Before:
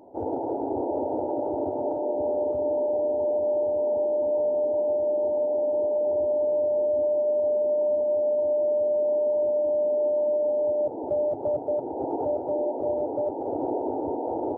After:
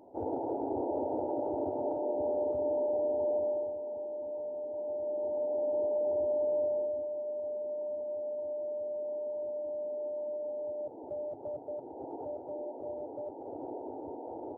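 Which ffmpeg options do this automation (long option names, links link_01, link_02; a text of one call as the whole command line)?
ffmpeg -i in.wav -af "volume=2.5dB,afade=type=out:start_time=3.38:duration=0.41:silence=0.375837,afade=type=in:start_time=4.68:duration=1.09:silence=0.398107,afade=type=out:start_time=6.63:duration=0.42:silence=0.446684" out.wav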